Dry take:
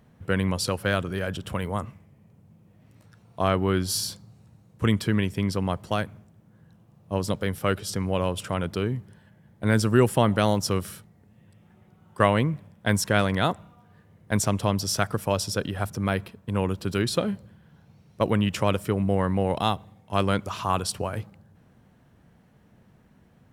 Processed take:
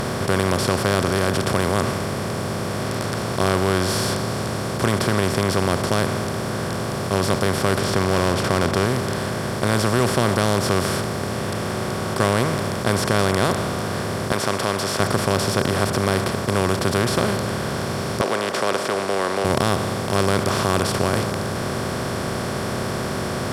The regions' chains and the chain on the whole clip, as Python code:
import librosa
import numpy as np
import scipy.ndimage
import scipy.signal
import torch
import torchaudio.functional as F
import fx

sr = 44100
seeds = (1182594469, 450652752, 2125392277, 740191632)

y = fx.chain(x, sr, fx.lowpass(hz=3400.0, slope=12),
    fx.leveller(passes=1), at=(7.84, 8.86))
y = fx.chain(y, sr, fx.highpass(hz=940.0, slope=12),
    fx.high_shelf(hz=8600.0, db=-10.5), at=(14.32, 15.0))
y = fx.chain(y, sr, fx.steep_highpass(hz=470.0, slope=36),
    fx.air_absorb(metres=120.0), at=(18.21, 19.45))
y = fx.bin_compress(y, sr, power=0.2)
y = fx.low_shelf(y, sr, hz=84.0, db=8.0)
y = y * librosa.db_to_amplitude(-5.5)